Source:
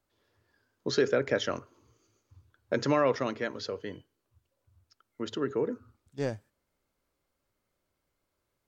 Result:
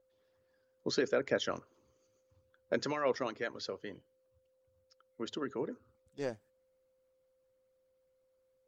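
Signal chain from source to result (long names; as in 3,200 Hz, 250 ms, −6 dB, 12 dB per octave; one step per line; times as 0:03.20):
steady tone 520 Hz −57 dBFS
harmonic and percussive parts rebalanced harmonic −12 dB
level −3 dB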